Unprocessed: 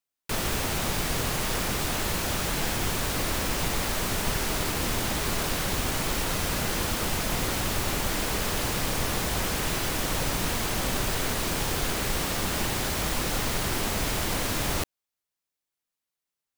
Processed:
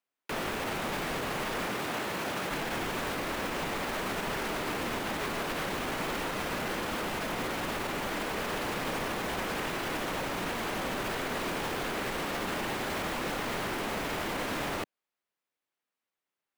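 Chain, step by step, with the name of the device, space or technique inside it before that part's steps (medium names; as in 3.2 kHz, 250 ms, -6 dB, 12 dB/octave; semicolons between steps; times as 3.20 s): DJ mixer with the lows and highs turned down (three-band isolator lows -14 dB, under 180 Hz, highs -12 dB, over 3.1 kHz; peak limiter -28.5 dBFS, peak gain reduction 10.5 dB); 1.67–2.50 s: high-pass 90 Hz; trim +4 dB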